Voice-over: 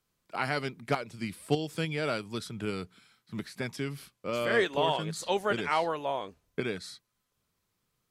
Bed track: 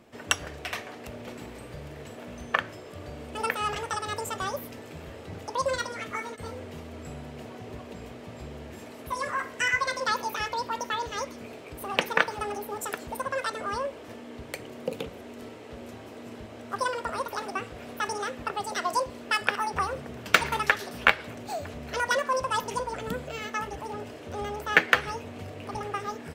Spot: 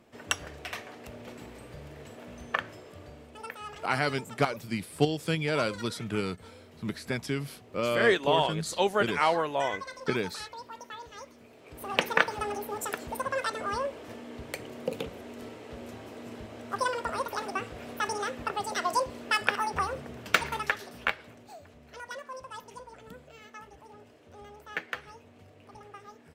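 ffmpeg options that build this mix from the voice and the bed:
-filter_complex "[0:a]adelay=3500,volume=3dB[a];[1:a]volume=8dB,afade=t=out:st=2.78:d=0.62:silence=0.375837,afade=t=in:st=11.55:d=0.45:silence=0.251189,afade=t=out:st=19.55:d=2.04:silence=0.188365[b];[a][b]amix=inputs=2:normalize=0"

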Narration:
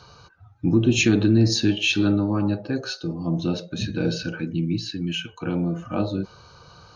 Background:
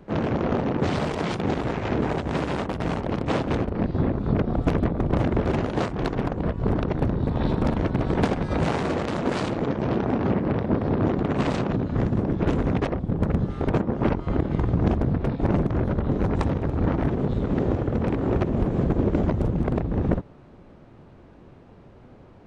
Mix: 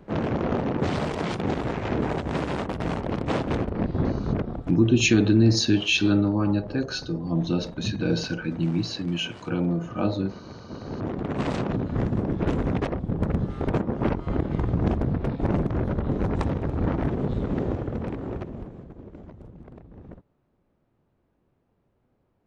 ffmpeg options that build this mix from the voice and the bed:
-filter_complex "[0:a]adelay=4050,volume=-0.5dB[a];[1:a]volume=15dB,afade=t=out:st=4.22:d=0.52:silence=0.141254,afade=t=in:st=10.67:d=0.91:silence=0.149624,afade=t=out:st=17.4:d=1.44:silence=0.105925[b];[a][b]amix=inputs=2:normalize=0"

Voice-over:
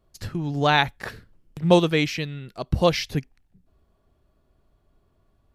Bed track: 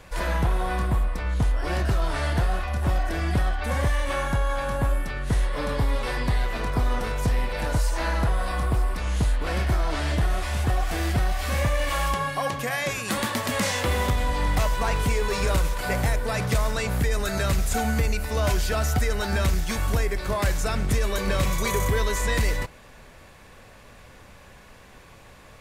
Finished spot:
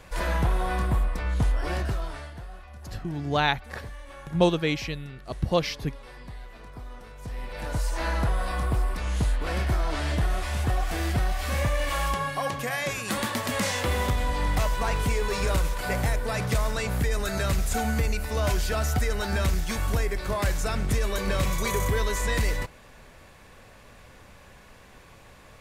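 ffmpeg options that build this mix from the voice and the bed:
-filter_complex "[0:a]adelay=2700,volume=-4.5dB[a];[1:a]volume=14.5dB,afade=t=out:st=1.58:d=0.73:silence=0.149624,afade=t=in:st=7.18:d=0.89:silence=0.16788[b];[a][b]amix=inputs=2:normalize=0"

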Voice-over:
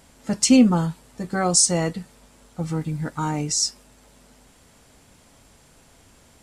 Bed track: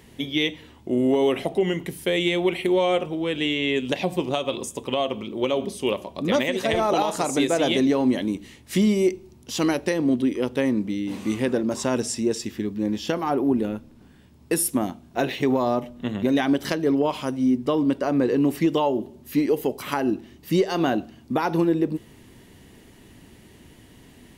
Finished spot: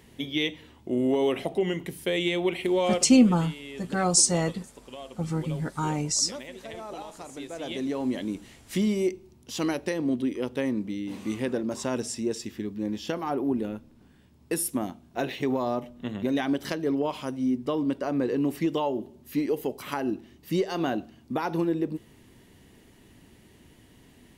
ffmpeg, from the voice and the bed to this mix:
-filter_complex "[0:a]adelay=2600,volume=-3dB[a];[1:a]volume=8dB,afade=t=out:st=2.89:d=0.28:silence=0.211349,afade=t=in:st=7.49:d=0.83:silence=0.251189[b];[a][b]amix=inputs=2:normalize=0"

